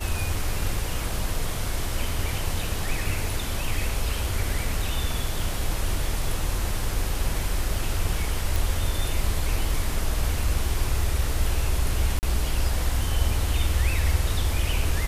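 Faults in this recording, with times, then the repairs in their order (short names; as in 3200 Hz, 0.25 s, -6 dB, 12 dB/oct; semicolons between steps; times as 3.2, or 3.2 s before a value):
8.56 pop
12.19–12.23 gap 39 ms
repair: de-click; interpolate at 12.19, 39 ms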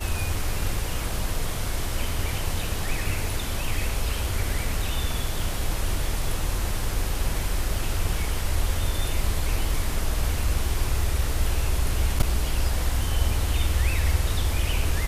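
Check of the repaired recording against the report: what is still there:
none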